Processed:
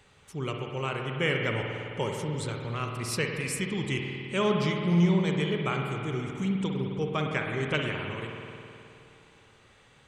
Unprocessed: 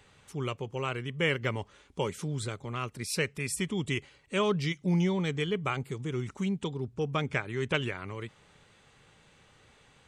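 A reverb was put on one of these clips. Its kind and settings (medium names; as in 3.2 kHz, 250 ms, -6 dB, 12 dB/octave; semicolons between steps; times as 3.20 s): spring tank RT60 2.7 s, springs 52 ms, chirp 20 ms, DRR 1.5 dB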